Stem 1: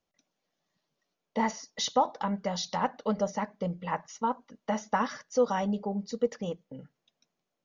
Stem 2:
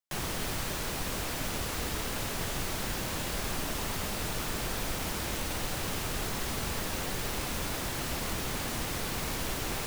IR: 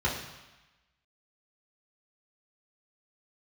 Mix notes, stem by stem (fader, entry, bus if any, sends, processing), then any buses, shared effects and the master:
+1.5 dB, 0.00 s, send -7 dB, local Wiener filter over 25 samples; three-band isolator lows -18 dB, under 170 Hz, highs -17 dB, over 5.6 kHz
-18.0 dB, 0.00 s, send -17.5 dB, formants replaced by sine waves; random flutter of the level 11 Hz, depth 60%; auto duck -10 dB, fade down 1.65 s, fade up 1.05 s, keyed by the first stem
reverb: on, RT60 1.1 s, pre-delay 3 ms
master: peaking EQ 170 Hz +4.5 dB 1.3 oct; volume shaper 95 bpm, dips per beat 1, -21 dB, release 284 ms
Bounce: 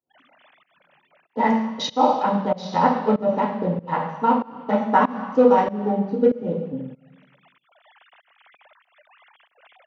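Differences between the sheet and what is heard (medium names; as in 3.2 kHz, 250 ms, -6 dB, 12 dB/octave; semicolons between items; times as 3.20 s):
stem 2: send off; reverb return +6.0 dB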